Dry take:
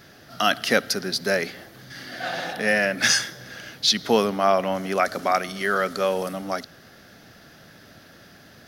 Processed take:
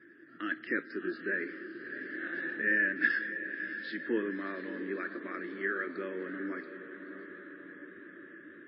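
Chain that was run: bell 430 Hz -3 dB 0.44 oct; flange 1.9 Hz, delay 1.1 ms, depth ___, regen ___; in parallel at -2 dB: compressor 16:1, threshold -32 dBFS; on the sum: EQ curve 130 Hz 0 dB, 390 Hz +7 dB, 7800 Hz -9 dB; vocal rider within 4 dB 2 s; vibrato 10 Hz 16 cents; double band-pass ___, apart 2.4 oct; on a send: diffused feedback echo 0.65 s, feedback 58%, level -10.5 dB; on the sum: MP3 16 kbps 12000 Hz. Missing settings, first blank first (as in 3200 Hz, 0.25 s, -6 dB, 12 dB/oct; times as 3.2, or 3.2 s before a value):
6.2 ms, -71%, 750 Hz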